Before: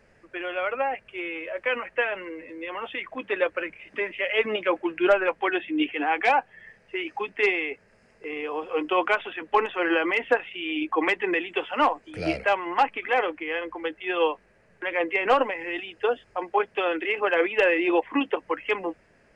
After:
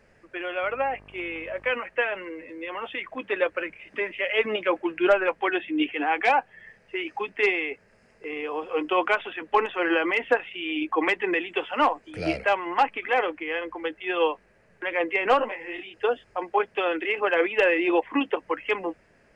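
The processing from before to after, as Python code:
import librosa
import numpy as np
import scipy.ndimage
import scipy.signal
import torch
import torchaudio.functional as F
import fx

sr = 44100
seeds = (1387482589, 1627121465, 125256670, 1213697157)

y = fx.dmg_buzz(x, sr, base_hz=50.0, harmonics=25, level_db=-52.0, tilt_db=-4, odd_only=False, at=(0.62, 1.71), fade=0.02)
y = fx.detune_double(y, sr, cents=49, at=(15.4, 15.94))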